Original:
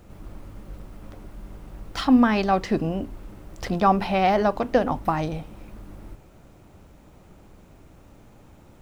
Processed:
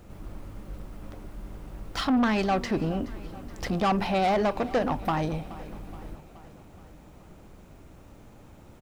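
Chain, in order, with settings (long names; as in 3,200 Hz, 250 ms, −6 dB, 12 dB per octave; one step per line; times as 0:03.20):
soft clipping −19.5 dBFS, distortion −9 dB
on a send: repeating echo 424 ms, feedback 59%, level −18.5 dB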